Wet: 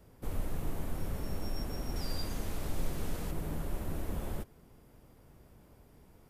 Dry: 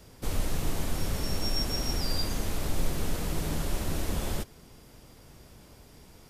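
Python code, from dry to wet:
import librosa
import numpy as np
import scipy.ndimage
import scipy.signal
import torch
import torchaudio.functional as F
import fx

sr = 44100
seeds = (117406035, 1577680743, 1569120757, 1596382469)

y = fx.peak_eq(x, sr, hz=5200.0, db=fx.steps((0.0, -12.0), (1.96, -4.5), (3.31, -12.0)), octaves=2.2)
y = y * 10.0 ** (-5.5 / 20.0)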